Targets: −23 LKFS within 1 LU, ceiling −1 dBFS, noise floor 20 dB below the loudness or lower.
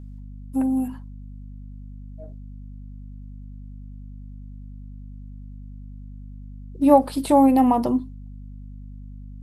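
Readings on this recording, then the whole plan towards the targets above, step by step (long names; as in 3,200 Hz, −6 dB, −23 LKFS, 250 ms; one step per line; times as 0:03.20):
mains hum 50 Hz; hum harmonics up to 250 Hz; level of the hum −36 dBFS; integrated loudness −19.5 LKFS; sample peak −2.0 dBFS; target loudness −23.0 LKFS
→ mains-hum notches 50/100/150/200/250 Hz
level −3.5 dB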